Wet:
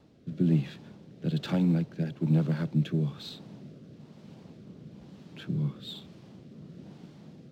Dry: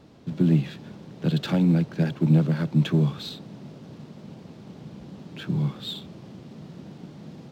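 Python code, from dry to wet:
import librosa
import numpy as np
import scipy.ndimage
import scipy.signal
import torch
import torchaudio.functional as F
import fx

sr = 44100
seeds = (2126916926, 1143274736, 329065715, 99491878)

y = fx.rotary(x, sr, hz=1.1)
y = F.gain(torch.from_numpy(y), -4.5).numpy()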